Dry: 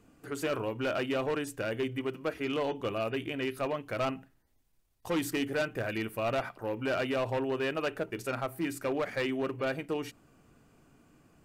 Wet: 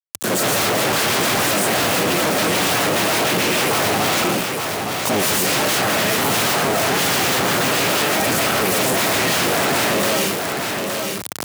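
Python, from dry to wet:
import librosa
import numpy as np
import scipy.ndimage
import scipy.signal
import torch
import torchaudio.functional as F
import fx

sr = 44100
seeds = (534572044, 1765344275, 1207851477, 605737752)

y = fx.cycle_switch(x, sr, every=3, mode='inverted')
y = fx.rev_freeverb(y, sr, rt60_s=0.4, hf_ratio=0.7, predelay_ms=85, drr_db=-5.5)
y = np.where(np.abs(y) >= 10.0 ** (-46.0 / 20.0), y, 0.0)
y = fx.high_shelf(y, sr, hz=4200.0, db=7.5)
y = 10.0 ** (-26.5 / 20.0) * (np.abs((y / 10.0 ** (-26.5 / 20.0) + 3.0) % 4.0 - 2.0) - 1.0)
y = fx.leveller(y, sr, passes=5)
y = scipy.signal.sosfilt(scipy.signal.butter(4, 100.0, 'highpass', fs=sr, output='sos'), y)
y = fx.low_shelf(y, sr, hz=210.0, db=3.0)
y = y + 10.0 ** (-10.0 / 20.0) * np.pad(y, (int(866 * sr / 1000.0), 0))[:len(y)]
y = fx.env_flatten(y, sr, amount_pct=50)
y = F.gain(torch.from_numpy(y), 8.5).numpy()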